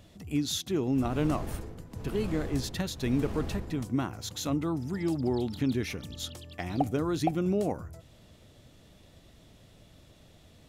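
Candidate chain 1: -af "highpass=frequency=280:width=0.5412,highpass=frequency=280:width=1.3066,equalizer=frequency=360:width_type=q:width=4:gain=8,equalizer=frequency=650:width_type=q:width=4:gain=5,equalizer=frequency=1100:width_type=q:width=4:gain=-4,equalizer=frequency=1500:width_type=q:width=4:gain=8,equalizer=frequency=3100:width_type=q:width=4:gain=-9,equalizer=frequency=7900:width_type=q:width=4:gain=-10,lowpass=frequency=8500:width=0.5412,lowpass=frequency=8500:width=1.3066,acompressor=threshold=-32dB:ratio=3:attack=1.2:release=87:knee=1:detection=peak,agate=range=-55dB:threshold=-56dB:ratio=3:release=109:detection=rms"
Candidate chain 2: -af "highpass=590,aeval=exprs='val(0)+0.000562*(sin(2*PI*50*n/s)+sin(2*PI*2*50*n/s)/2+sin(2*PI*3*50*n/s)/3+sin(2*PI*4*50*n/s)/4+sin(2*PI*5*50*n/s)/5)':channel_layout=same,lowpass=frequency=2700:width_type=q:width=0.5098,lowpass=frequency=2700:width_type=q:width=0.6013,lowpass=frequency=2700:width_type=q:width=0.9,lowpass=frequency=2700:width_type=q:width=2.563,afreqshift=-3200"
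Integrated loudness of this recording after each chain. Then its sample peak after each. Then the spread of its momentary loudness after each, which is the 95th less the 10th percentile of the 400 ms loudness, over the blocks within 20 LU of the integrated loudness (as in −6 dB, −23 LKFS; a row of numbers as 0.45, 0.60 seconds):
−36.5, −37.0 LKFS; −23.5, −18.0 dBFS; 9, 13 LU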